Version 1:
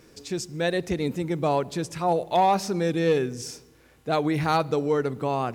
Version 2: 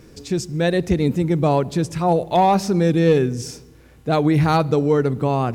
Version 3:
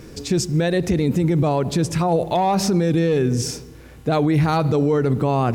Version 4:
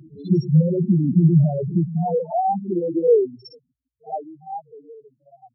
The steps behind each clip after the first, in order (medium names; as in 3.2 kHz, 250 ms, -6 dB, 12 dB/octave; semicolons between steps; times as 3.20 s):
bass shelf 270 Hz +10.5 dB; trim +3 dB
peak limiter -17 dBFS, peak gain reduction 11.5 dB; trim +6 dB
loudest bins only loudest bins 2; high-pass sweep 160 Hz -> 1.8 kHz, 1.55–5.16 s; reverse echo 57 ms -15.5 dB